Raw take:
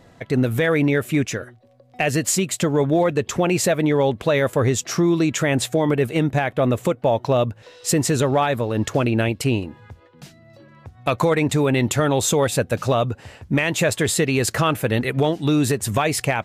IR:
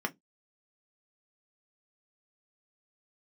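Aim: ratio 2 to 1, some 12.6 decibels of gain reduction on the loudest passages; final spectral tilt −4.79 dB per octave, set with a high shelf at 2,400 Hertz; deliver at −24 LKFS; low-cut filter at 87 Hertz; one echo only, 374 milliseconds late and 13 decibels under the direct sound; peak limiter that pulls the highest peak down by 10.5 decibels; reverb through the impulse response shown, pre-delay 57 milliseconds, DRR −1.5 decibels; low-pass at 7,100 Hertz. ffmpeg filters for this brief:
-filter_complex "[0:a]highpass=87,lowpass=7100,highshelf=frequency=2400:gain=8,acompressor=threshold=-38dB:ratio=2,alimiter=limit=-24dB:level=0:latency=1,aecho=1:1:374:0.224,asplit=2[link_01][link_02];[1:a]atrim=start_sample=2205,adelay=57[link_03];[link_02][link_03]afir=irnorm=-1:irlink=0,volume=-4dB[link_04];[link_01][link_04]amix=inputs=2:normalize=0,volume=6.5dB"

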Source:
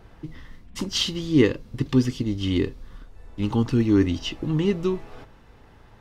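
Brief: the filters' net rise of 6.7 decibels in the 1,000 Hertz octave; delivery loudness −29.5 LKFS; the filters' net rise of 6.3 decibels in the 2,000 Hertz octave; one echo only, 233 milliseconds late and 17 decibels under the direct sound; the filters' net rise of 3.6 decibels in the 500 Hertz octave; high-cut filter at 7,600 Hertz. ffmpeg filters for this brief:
ffmpeg -i in.wav -af "lowpass=7600,equalizer=frequency=500:width_type=o:gain=4,equalizer=frequency=1000:width_type=o:gain=5.5,equalizer=frequency=2000:width_type=o:gain=6,aecho=1:1:233:0.141,volume=-7.5dB" out.wav

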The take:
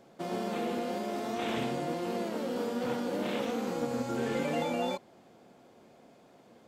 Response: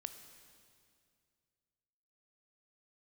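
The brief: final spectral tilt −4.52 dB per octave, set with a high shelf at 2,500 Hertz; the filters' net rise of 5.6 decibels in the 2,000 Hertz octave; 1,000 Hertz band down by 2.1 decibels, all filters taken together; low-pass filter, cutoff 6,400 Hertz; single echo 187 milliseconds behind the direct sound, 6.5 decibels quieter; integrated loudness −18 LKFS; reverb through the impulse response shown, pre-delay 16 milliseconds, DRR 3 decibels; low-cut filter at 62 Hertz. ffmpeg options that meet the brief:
-filter_complex "[0:a]highpass=62,lowpass=6400,equalizer=frequency=1000:width_type=o:gain=-5.5,equalizer=frequency=2000:width_type=o:gain=5,highshelf=frequency=2500:gain=7,aecho=1:1:187:0.473,asplit=2[link_01][link_02];[1:a]atrim=start_sample=2205,adelay=16[link_03];[link_02][link_03]afir=irnorm=-1:irlink=0,volume=0.5dB[link_04];[link_01][link_04]amix=inputs=2:normalize=0,volume=12.5dB"

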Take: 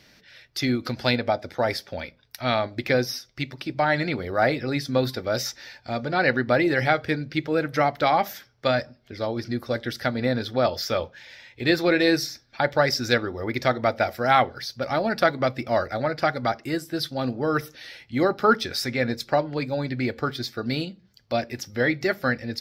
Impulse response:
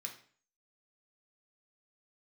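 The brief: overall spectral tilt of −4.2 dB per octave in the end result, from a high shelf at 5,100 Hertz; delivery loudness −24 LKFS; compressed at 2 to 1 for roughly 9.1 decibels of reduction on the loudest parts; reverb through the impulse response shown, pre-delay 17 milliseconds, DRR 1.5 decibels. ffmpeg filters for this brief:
-filter_complex "[0:a]highshelf=frequency=5100:gain=-4,acompressor=threshold=-31dB:ratio=2,asplit=2[link_01][link_02];[1:a]atrim=start_sample=2205,adelay=17[link_03];[link_02][link_03]afir=irnorm=-1:irlink=0,volume=1dB[link_04];[link_01][link_04]amix=inputs=2:normalize=0,volume=6dB"

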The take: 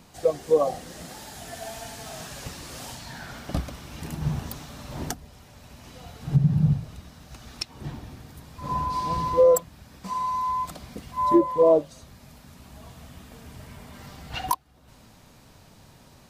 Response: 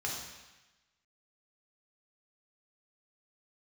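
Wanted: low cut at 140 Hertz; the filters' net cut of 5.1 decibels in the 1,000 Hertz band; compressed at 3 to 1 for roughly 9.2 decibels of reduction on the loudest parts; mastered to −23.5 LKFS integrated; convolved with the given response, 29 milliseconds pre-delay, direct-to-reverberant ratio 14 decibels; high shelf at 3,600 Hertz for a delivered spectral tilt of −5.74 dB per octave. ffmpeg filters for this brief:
-filter_complex "[0:a]highpass=140,equalizer=frequency=1000:width_type=o:gain=-5,highshelf=frequency=3600:gain=-5,acompressor=threshold=-27dB:ratio=3,asplit=2[link_01][link_02];[1:a]atrim=start_sample=2205,adelay=29[link_03];[link_02][link_03]afir=irnorm=-1:irlink=0,volume=-18.5dB[link_04];[link_01][link_04]amix=inputs=2:normalize=0,volume=11dB"

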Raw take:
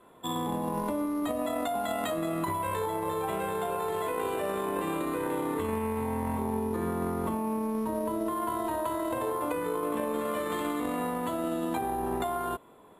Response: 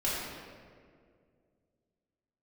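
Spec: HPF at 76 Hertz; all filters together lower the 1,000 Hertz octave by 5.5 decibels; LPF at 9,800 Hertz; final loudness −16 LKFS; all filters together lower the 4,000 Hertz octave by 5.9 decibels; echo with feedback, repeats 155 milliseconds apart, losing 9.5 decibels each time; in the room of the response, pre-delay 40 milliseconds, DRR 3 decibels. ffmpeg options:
-filter_complex "[0:a]highpass=76,lowpass=9800,equalizer=frequency=1000:width_type=o:gain=-6.5,equalizer=frequency=4000:width_type=o:gain=-7,aecho=1:1:155|310|465|620:0.335|0.111|0.0365|0.012,asplit=2[link_01][link_02];[1:a]atrim=start_sample=2205,adelay=40[link_03];[link_02][link_03]afir=irnorm=-1:irlink=0,volume=-11.5dB[link_04];[link_01][link_04]amix=inputs=2:normalize=0,volume=15dB"

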